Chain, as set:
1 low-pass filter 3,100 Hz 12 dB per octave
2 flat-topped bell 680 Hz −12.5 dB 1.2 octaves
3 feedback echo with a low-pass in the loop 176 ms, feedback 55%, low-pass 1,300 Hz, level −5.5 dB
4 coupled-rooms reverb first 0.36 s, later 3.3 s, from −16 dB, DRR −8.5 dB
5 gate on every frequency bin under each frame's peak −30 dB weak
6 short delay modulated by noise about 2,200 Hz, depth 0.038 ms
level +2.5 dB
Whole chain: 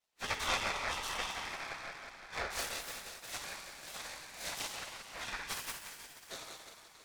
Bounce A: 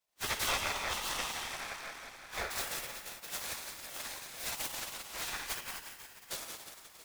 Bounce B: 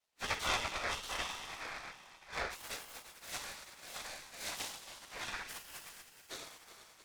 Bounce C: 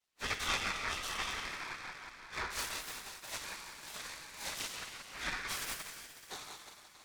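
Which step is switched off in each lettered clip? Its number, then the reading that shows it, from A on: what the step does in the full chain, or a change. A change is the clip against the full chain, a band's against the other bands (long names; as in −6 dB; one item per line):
1, 8 kHz band +3.0 dB
3, change in momentary loudness spread +2 LU
2, 500 Hz band −4.0 dB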